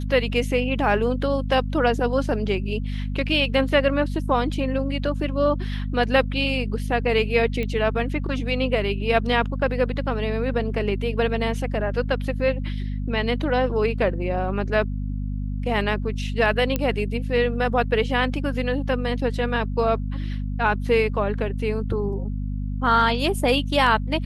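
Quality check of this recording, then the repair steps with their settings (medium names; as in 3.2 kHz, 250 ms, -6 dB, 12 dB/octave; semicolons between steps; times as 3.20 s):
hum 50 Hz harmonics 5 -27 dBFS
7.63 s: pop -16 dBFS
16.76 s: pop -9 dBFS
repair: de-click; de-hum 50 Hz, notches 5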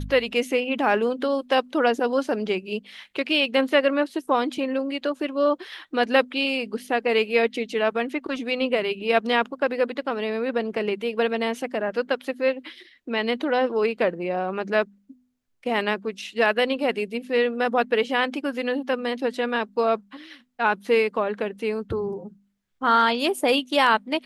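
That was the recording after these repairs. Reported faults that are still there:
nothing left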